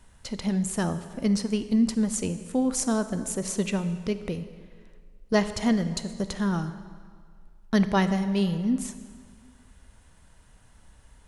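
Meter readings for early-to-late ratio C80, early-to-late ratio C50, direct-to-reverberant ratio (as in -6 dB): 13.0 dB, 12.0 dB, 11.0 dB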